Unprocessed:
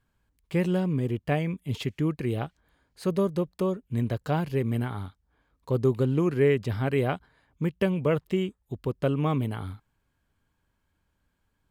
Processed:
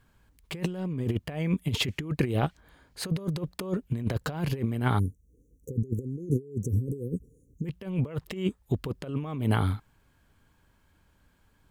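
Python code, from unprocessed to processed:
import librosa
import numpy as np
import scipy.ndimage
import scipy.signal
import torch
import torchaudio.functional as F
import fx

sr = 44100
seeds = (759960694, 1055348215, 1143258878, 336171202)

y = fx.over_compress(x, sr, threshold_db=-31.0, ratio=-0.5)
y = fx.brickwall_bandstop(y, sr, low_hz=530.0, high_hz=5600.0, at=(4.98, 7.65), fade=0.02)
y = y * librosa.db_to_amplitude(3.5)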